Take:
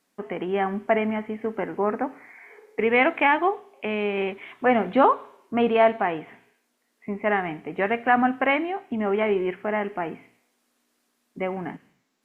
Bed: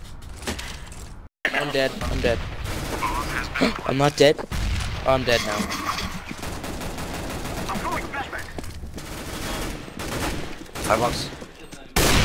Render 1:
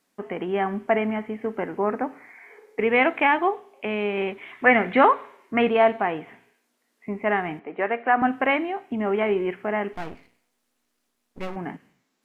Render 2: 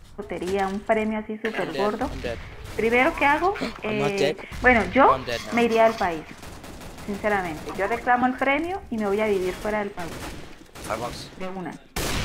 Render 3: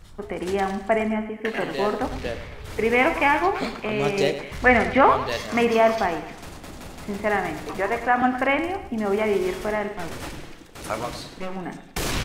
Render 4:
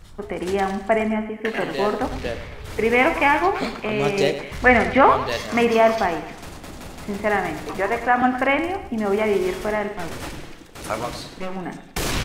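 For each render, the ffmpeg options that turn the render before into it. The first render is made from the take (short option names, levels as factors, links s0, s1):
-filter_complex "[0:a]asettb=1/sr,asplit=3[s0][s1][s2];[s0]atrim=end=4.534[s3];[s1]atrim=start=4.53:end=5.69,asetpts=PTS-STARTPTS,afade=t=in:d=0.004:c=qsin,afade=t=out:st=1.156:d=0.004:c=qsin,equalizer=f=2000:w=2:g=12.5[s4];[s2]atrim=start=5.686[s5];[s3][s4]acrossfade=d=0.004:c1=hsin:c2=qsin[s6];[s6][s5]acrossfade=d=0.004:c1=qsin:c2=hsin,asettb=1/sr,asplit=3[s7][s8][s9];[s7]atrim=end=7.594[s10];[s8]atrim=start=7.59:end=8.22,asetpts=PTS-STARTPTS,afade=t=in:d=0.004:c=qsin,afade=t=out:st=0.626:d=0.004:c=qsin,highpass=310,lowpass=2400[s11];[s9]atrim=start=8.216[s12];[s10][s11]acrossfade=d=0.004:c1=hsin:c2=qsin[s13];[s13][s12]acrossfade=d=0.004:c1=qsin:c2=hsin,asettb=1/sr,asplit=3[s14][s15][s16];[s14]atrim=end=9.934[s17];[s15]atrim=start=9.93:end=11.56,asetpts=PTS-STARTPTS,afade=t=in:d=0.004:c=qsin,afade=t=out:st=1.626:d=0.004:c=qsin,aeval=exprs='max(val(0),0)':c=same[s18];[s16]atrim=start=11.556[s19];[s17][s18]acrossfade=d=0.004:c1=hsin:c2=qsin[s20];[s20][s19]acrossfade=d=0.004:c1=qsin:c2=hsin"
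-filter_complex "[1:a]volume=0.376[s0];[0:a][s0]amix=inputs=2:normalize=0"
-filter_complex "[0:a]asplit=2[s0][s1];[s1]adelay=36,volume=0.2[s2];[s0][s2]amix=inputs=2:normalize=0,aecho=1:1:106|212|318|424:0.251|0.1|0.0402|0.0161"
-af "volume=1.26"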